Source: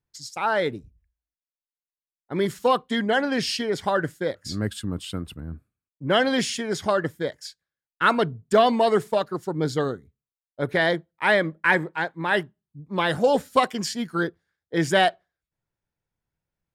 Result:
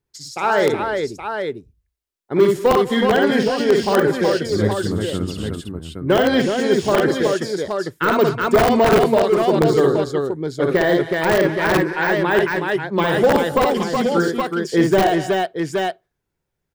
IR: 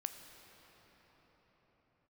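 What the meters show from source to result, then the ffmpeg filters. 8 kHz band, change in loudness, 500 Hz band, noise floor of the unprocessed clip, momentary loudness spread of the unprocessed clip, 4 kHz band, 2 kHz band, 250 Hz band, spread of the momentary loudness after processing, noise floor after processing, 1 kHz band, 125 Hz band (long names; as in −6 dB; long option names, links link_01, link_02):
+3.5 dB, +6.0 dB, +8.5 dB, below −85 dBFS, 12 LU, +2.5 dB, +3.5 dB, +8.5 dB, 9 LU, −78 dBFS, +5.0 dB, +7.5 dB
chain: -filter_complex "[0:a]equalizer=frequency=390:width_type=o:width=0.42:gain=8.5,asoftclip=type=hard:threshold=-12dB,asplit=2[link_01][link_02];[link_02]aecho=0:1:57|77|193|243|371|821:0.596|0.126|0.112|0.119|0.562|0.447[link_03];[link_01][link_03]amix=inputs=2:normalize=0,aeval=exprs='(mod(2.66*val(0)+1,2)-1)/2.66':channel_layout=same,deesser=0.8,volume=4dB"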